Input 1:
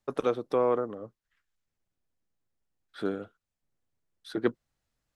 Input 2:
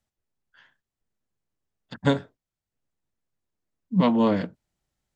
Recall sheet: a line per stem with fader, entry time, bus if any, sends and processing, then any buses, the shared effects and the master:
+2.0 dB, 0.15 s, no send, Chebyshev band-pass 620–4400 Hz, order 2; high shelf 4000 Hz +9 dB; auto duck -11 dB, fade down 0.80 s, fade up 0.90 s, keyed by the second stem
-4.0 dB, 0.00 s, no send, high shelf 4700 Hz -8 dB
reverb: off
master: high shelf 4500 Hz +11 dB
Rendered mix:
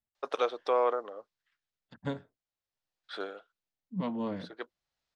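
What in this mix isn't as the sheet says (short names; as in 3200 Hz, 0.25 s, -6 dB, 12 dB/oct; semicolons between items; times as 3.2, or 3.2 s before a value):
stem 2 -4.0 dB -> -13.5 dB; master: missing high shelf 4500 Hz +11 dB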